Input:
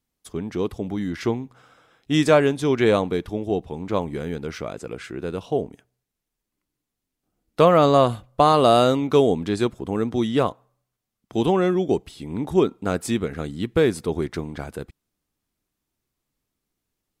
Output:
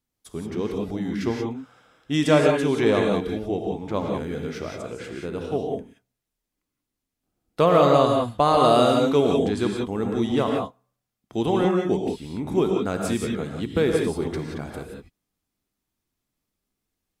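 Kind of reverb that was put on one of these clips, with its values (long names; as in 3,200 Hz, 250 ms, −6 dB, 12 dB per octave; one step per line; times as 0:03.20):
reverb whose tail is shaped and stops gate 200 ms rising, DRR 1 dB
level −3.5 dB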